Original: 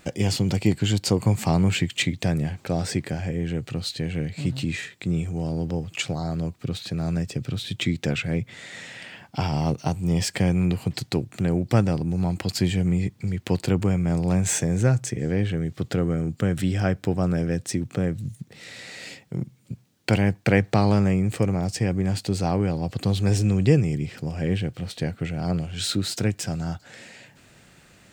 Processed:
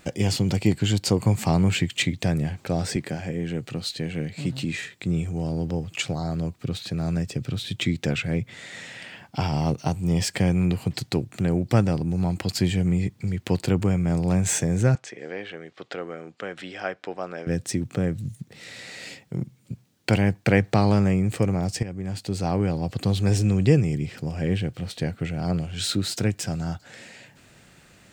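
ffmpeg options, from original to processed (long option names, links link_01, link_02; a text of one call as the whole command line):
ffmpeg -i in.wav -filter_complex "[0:a]asettb=1/sr,asplit=3[link_01][link_02][link_03];[link_01]atrim=end=2.964[link_04];[link_02]atrim=start=2.96:end=4.81,asetpts=PTS-STARTPTS,afade=type=in:duration=0.004:curve=qsin,afade=type=out:start_time=1.846:duration=0.004:curve=qsin,highpass=130[link_05];[link_03]atrim=start=4.806[link_06];[link_04][link_05]acrossfade=duration=0.004:curve1=hsin:curve2=qsin[link_07];[link_07][link_06]acrossfade=duration=0.004:curve1=qsin:curve2=hsin,asettb=1/sr,asplit=3[link_08][link_09][link_10];[link_08]atrim=end=14.954[link_11];[link_09]atrim=start=14.95:end=17.47,asetpts=PTS-STARTPTS,afade=type=in:duration=0.004:curve=qsin,afade=type=out:start_time=2.516:duration=0.004:curve=qsin,highpass=560,lowpass=3900[link_12];[link_10]atrim=start=17.466[link_13];[link_11][link_12]acrossfade=duration=0.004:curve1=hsin:curve2=qsin[link_14];[link_14][link_13]acrossfade=duration=0.004:curve1=qsin:curve2=hsin,asplit=2[link_15][link_16];[link_15]atrim=end=21.83,asetpts=PTS-STARTPTS,afade=type=out:start_time=21.826:duration=0.004:curve=hsin:silence=0.237137[link_17];[link_16]atrim=start=21.83,asetpts=PTS-STARTPTS,afade=type=in:duration=0.8:silence=0.237137[link_18];[link_17][link_18]concat=n=2:v=0:a=1" out.wav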